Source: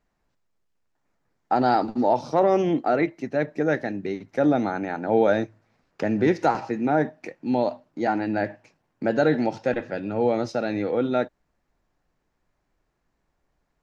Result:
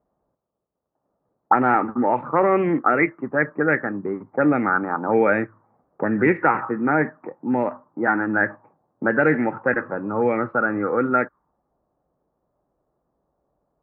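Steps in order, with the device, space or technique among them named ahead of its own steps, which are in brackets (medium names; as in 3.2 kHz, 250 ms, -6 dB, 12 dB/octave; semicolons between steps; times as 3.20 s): envelope filter bass rig (touch-sensitive low-pass 660–2300 Hz up, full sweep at -17 dBFS; cabinet simulation 63–2100 Hz, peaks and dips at 90 Hz -6 dB, 680 Hz -8 dB, 1.2 kHz +8 dB); trim +2 dB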